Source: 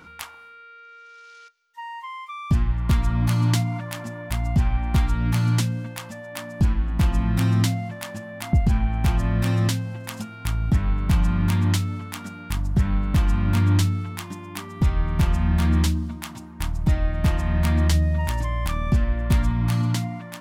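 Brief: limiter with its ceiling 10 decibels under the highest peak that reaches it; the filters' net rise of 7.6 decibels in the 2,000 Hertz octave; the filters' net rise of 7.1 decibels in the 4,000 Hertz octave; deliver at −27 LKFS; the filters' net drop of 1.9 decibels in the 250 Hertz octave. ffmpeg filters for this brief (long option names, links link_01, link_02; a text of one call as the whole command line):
ffmpeg -i in.wav -af "equalizer=frequency=250:width_type=o:gain=-3,equalizer=frequency=2000:width_type=o:gain=7.5,equalizer=frequency=4000:width_type=o:gain=6.5,volume=-1dB,alimiter=limit=-16dB:level=0:latency=1" out.wav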